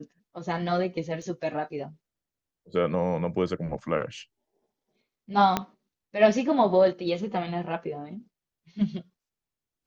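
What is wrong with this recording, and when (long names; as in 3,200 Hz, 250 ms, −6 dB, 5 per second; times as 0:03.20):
0:01.22: drop-out 3.8 ms
0:05.57: click −9 dBFS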